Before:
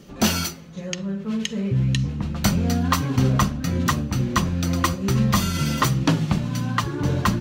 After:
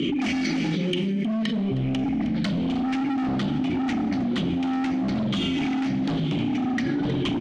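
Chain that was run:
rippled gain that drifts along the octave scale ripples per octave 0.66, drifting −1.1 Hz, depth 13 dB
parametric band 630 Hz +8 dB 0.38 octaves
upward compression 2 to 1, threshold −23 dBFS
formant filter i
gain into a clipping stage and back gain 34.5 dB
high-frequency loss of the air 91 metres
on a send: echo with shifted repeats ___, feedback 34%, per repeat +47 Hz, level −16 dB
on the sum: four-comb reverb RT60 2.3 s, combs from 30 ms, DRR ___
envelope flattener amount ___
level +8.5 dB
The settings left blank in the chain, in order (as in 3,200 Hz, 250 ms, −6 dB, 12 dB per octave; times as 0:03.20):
313 ms, 14 dB, 100%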